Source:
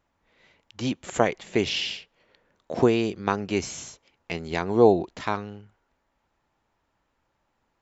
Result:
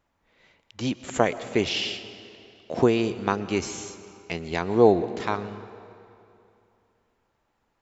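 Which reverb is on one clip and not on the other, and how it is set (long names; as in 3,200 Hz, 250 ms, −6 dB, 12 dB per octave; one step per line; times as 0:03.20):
comb and all-pass reverb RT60 2.7 s, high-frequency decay 0.85×, pre-delay 80 ms, DRR 13.5 dB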